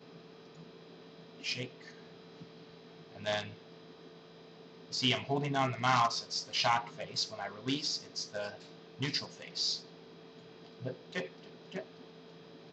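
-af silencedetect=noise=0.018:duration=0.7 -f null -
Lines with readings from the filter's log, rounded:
silence_start: 0.00
silence_end: 1.44 | silence_duration: 1.44
silence_start: 1.65
silence_end: 3.26 | silence_duration: 1.61
silence_start: 3.48
silence_end: 4.93 | silence_duration: 1.45
silence_start: 9.76
silence_end: 10.85 | silence_duration: 1.08
silence_start: 11.80
silence_end: 12.72 | silence_duration: 0.92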